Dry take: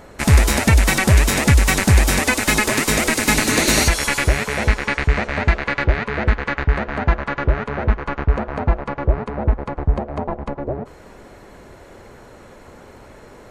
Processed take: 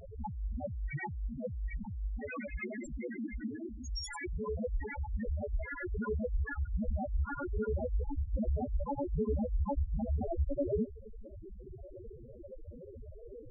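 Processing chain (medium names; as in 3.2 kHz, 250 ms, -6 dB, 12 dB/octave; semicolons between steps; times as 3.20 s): compressor with a negative ratio -26 dBFS, ratio -1; loudest bins only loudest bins 2; trim -2.5 dB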